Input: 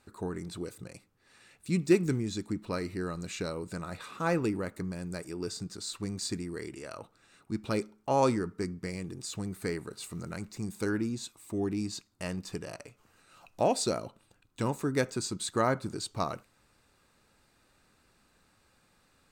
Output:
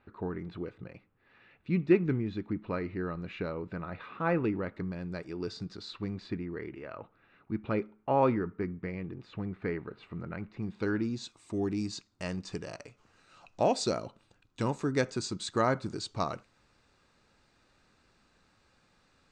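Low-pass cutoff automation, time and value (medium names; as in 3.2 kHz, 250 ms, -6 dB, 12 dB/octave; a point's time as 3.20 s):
low-pass 24 dB/octave
4.30 s 2.9 kHz
5.66 s 4.9 kHz
6.40 s 2.7 kHz
10.47 s 2.7 kHz
11.35 s 6.9 kHz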